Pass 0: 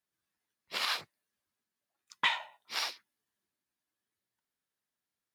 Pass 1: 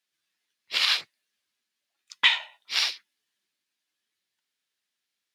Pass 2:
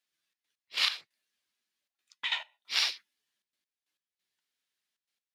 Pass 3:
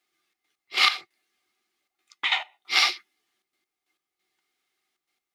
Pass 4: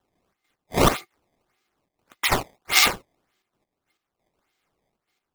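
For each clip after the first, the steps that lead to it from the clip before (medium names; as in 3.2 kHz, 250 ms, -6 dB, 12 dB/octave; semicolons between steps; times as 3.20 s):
frequency weighting D
trance gate "xxx.x..x..xxxx" 136 bpm -12 dB; trim -3 dB
small resonant body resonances 360/760/1200/2100 Hz, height 15 dB, ringing for 40 ms; trim +5.5 dB
decimation with a swept rate 18×, swing 160% 1.7 Hz; trim +3.5 dB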